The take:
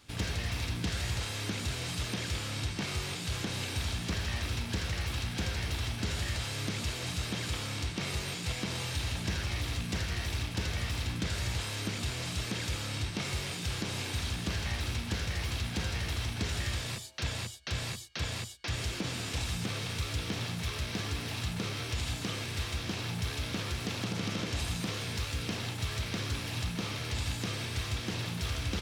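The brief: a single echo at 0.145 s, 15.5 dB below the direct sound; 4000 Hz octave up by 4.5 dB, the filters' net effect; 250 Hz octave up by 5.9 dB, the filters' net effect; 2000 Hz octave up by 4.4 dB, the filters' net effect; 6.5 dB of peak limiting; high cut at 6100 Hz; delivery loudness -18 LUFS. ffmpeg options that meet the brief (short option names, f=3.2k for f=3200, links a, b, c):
-af "lowpass=6.1k,equalizer=f=250:t=o:g=8,equalizer=f=2k:t=o:g=4,equalizer=f=4k:t=o:g=5,alimiter=limit=-23.5dB:level=0:latency=1,aecho=1:1:145:0.168,volume=14.5dB"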